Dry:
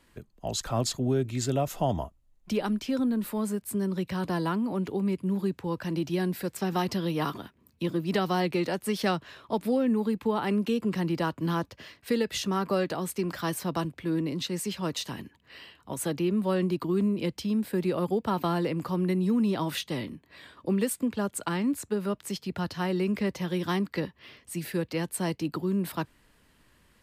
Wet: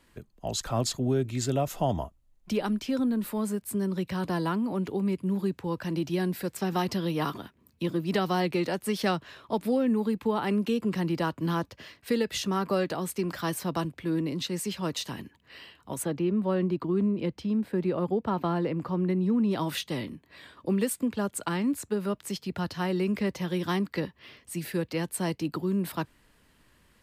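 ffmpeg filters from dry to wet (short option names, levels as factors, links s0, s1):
-filter_complex "[0:a]asplit=3[s0][s1][s2];[s0]afade=t=out:st=16.02:d=0.02[s3];[s1]lowpass=f=1800:p=1,afade=t=in:st=16.02:d=0.02,afade=t=out:st=19.5:d=0.02[s4];[s2]afade=t=in:st=19.5:d=0.02[s5];[s3][s4][s5]amix=inputs=3:normalize=0"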